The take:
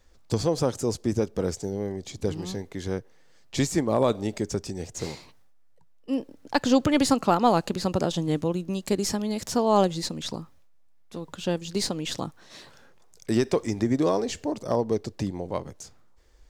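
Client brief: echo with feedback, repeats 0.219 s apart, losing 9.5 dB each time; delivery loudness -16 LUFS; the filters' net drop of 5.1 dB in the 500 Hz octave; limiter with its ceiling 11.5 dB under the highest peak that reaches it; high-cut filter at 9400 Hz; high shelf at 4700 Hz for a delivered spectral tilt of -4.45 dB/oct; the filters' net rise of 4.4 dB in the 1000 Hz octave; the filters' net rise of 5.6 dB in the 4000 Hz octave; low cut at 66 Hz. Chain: HPF 66 Hz; LPF 9400 Hz; bell 500 Hz -9 dB; bell 1000 Hz +8.5 dB; bell 4000 Hz +9 dB; high shelf 4700 Hz -4.5 dB; limiter -16.5 dBFS; feedback echo 0.219 s, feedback 33%, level -9.5 dB; gain +13.5 dB

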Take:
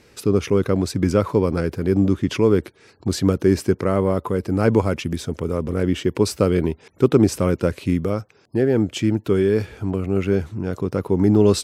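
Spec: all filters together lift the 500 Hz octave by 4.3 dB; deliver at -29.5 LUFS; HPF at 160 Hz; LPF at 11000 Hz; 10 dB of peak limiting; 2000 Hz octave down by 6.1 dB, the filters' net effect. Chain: HPF 160 Hz; LPF 11000 Hz; bell 500 Hz +6 dB; bell 2000 Hz -9 dB; gain -8 dB; limiter -17.5 dBFS

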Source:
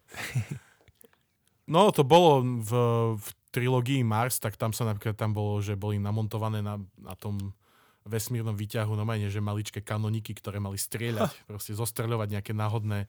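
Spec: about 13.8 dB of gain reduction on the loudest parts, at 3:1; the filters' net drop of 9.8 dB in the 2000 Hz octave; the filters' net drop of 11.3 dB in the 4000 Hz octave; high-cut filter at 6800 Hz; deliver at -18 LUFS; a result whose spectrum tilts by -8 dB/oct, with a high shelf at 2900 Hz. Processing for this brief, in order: LPF 6800 Hz; bell 2000 Hz -8.5 dB; high shelf 2900 Hz -7.5 dB; bell 4000 Hz -5.5 dB; compressor 3:1, threshold -34 dBFS; gain +20 dB

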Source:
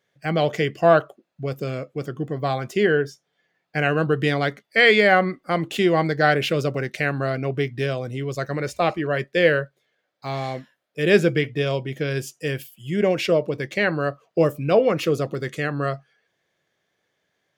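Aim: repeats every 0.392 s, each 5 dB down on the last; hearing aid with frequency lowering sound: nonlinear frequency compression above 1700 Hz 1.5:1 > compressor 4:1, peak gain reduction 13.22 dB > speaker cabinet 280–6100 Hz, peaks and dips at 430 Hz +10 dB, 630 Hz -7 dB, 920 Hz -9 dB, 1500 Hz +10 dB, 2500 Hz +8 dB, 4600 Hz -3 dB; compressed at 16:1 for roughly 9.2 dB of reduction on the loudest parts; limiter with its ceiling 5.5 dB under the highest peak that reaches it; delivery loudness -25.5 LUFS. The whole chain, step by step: compressor 16:1, threshold -19 dBFS; limiter -14.5 dBFS; feedback echo 0.392 s, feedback 56%, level -5 dB; nonlinear frequency compression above 1700 Hz 1.5:1; compressor 4:1, threshold -34 dBFS; speaker cabinet 280–6100 Hz, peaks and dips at 430 Hz +10 dB, 630 Hz -7 dB, 920 Hz -9 dB, 1500 Hz +10 dB, 2500 Hz +8 dB, 4600 Hz -3 dB; gain +7.5 dB

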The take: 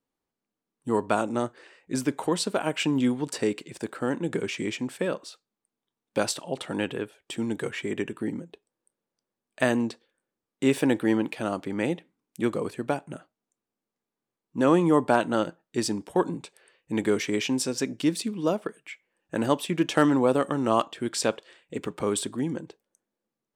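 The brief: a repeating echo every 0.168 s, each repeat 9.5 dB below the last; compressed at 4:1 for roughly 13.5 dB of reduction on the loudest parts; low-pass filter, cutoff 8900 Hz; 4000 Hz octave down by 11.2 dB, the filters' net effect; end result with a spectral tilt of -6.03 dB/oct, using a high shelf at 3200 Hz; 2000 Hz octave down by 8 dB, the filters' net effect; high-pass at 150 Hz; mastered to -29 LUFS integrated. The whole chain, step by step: HPF 150 Hz; LPF 8900 Hz; bell 2000 Hz -7 dB; high shelf 3200 Hz -5.5 dB; bell 4000 Hz -8.5 dB; compressor 4:1, threshold -34 dBFS; feedback echo 0.168 s, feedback 33%, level -9.5 dB; gain +9.5 dB

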